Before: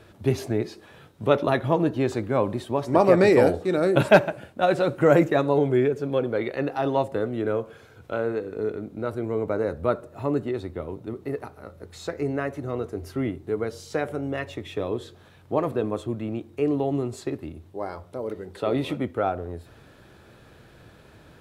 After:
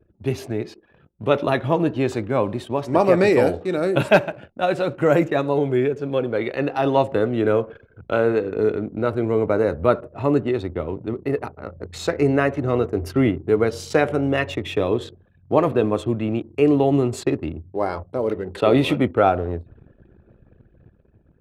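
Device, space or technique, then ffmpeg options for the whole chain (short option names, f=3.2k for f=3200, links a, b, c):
voice memo with heavy noise removal: -af "equalizer=f=2.7k:t=o:w=0.43:g=4,anlmdn=0.0631,dynaudnorm=f=510:g=5:m=11.5dB,volume=-1dB"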